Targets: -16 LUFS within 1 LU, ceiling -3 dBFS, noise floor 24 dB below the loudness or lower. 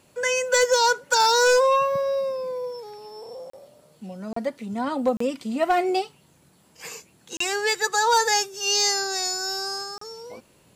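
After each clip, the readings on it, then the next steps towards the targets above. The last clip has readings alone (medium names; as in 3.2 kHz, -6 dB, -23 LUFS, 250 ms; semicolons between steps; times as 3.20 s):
clipped samples 0.5%; clipping level -13.0 dBFS; dropouts 5; longest dropout 34 ms; loudness -22.0 LUFS; peak level -13.0 dBFS; loudness target -16.0 LUFS
-> clip repair -13 dBFS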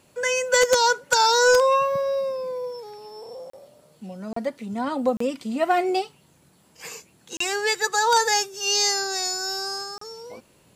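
clipped samples 0.0%; dropouts 5; longest dropout 34 ms
-> interpolate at 3.50/4.33/5.17/7.37/9.98 s, 34 ms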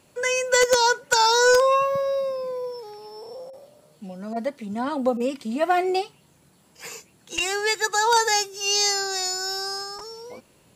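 dropouts 0; loudness -22.0 LUFS; peak level -4.0 dBFS; loudness target -16.0 LUFS
-> trim +6 dB; peak limiter -3 dBFS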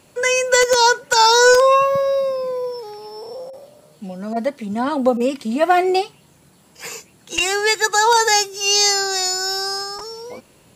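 loudness -16.5 LUFS; peak level -3.0 dBFS; noise floor -53 dBFS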